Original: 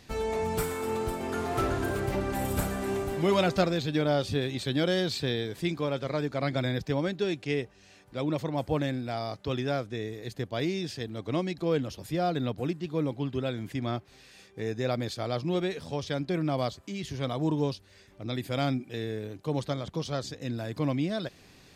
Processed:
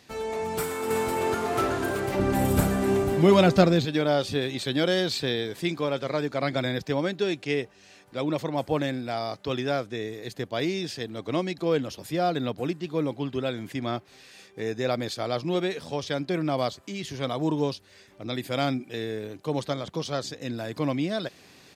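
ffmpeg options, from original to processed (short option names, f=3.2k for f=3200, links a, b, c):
-filter_complex "[0:a]asplit=2[a][b];[b]afade=t=in:st=0.64:d=0.01,afade=t=out:st=1.08:d=0.01,aecho=0:1:260|520|780|1040|1300:0.944061|0.330421|0.115647|0.0404766|0.0141668[c];[a][c]amix=inputs=2:normalize=0,asettb=1/sr,asplit=3[d][e][f];[d]atrim=end=2.194[g];[e]atrim=start=2.19:end=3.85,asetpts=PTS-STARTPTS,afade=t=in:d=0.004:c=qsin,afade=t=out:st=1.656:d=0.004:c=qsin,lowshelf=f=300:g=12[h];[f]atrim=start=3.846[i];[g][h]acrossfade=d=0.004:c1=hsin:c2=qsin[j];[j][i]acrossfade=d=0.004:c1=qsin:c2=hsin,highpass=f=220:p=1,dynaudnorm=f=180:g=7:m=4dB"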